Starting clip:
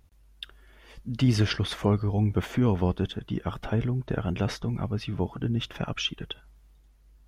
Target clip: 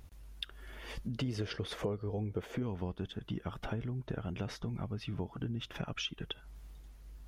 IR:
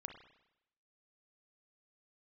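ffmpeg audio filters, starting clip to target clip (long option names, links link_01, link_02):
-filter_complex "[0:a]asettb=1/sr,asplit=3[link_01][link_02][link_03];[link_01]atrim=end=1.154[link_04];[link_02]atrim=start=1.15:end=2.63,asetpts=PTS-STARTPTS,afade=type=in:duration=0.004:curve=qsin,afade=type=out:start_time=1.476:duration=0.004:curve=qsin,equalizer=frequency=470:width_type=o:width=0.66:gain=10.5[link_05];[link_03]atrim=start=2.626[link_06];[link_04][link_05]acrossfade=duration=0.004:curve1=hsin:curve2=qsin[link_07];[link_07][link_06]acrossfade=duration=0.004:curve1=qsin:curve2=hsin,acompressor=threshold=-44dB:ratio=4,volume=6dB"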